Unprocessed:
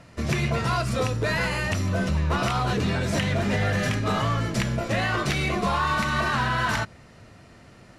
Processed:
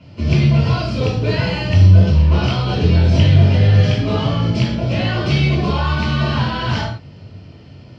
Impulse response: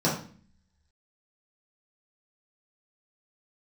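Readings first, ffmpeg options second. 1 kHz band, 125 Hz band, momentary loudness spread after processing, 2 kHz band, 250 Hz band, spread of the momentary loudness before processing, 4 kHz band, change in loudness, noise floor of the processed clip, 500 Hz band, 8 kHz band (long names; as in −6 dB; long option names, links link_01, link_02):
+0.5 dB, +13.5 dB, 8 LU, +0.5 dB, +8.5 dB, 2 LU, +7.0 dB, +9.5 dB, −40 dBFS, +6.0 dB, can't be measured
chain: -filter_complex "[0:a]lowpass=frequency=5000:width_type=q:width=5.3[link_01];[1:a]atrim=start_sample=2205,afade=type=out:start_time=0.13:duration=0.01,atrim=end_sample=6174,asetrate=24696,aresample=44100[link_02];[link_01][link_02]afir=irnorm=-1:irlink=0,volume=-13.5dB"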